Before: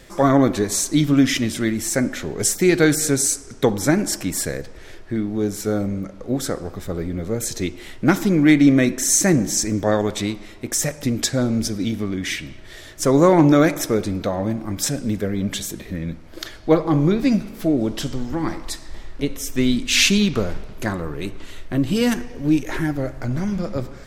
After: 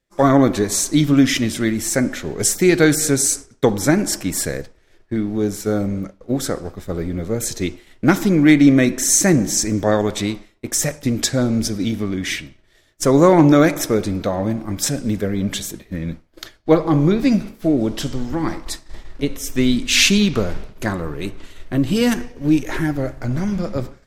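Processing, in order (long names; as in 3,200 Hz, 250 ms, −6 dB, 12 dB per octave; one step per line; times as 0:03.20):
downward expander −26 dBFS
level +2 dB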